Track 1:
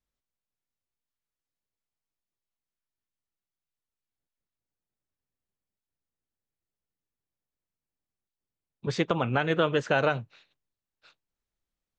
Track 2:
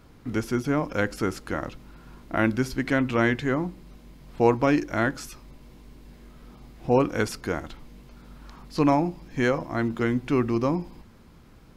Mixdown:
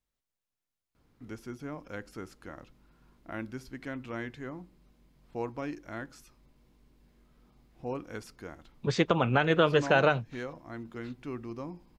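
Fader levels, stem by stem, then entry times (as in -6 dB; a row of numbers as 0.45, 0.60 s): +1.0, -15.5 dB; 0.00, 0.95 s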